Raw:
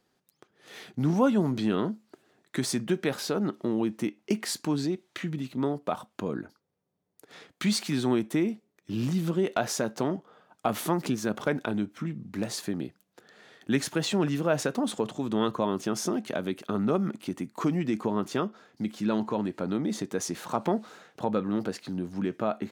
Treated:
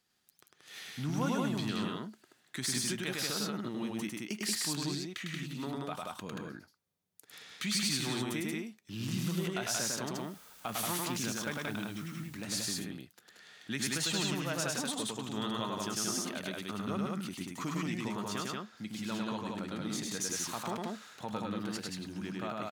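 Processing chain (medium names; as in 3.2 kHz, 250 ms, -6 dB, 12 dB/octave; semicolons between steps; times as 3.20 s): amplifier tone stack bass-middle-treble 5-5-5; in parallel at +1 dB: peak limiter -33 dBFS, peak gain reduction 8.5 dB; 10.17–12.27 s: on the sum: word length cut 10-bit, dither triangular; loudspeakers at several distances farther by 35 m -2 dB, 62 m -2 dB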